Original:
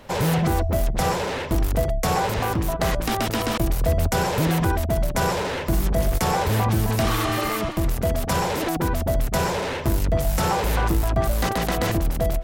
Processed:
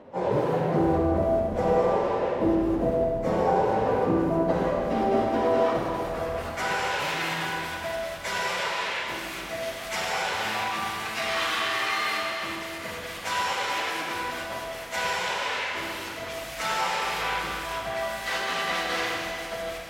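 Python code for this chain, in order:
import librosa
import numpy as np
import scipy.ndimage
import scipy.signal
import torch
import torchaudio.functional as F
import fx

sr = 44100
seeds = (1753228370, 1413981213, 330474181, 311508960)

y = fx.filter_sweep_bandpass(x, sr, from_hz=440.0, to_hz=2400.0, start_s=3.3, end_s=4.37, q=0.96)
y = fx.stretch_vocoder_free(y, sr, factor=1.6)
y = fx.rev_schroeder(y, sr, rt60_s=2.6, comb_ms=33, drr_db=-1.0)
y = y * librosa.db_to_amplitude(3.0)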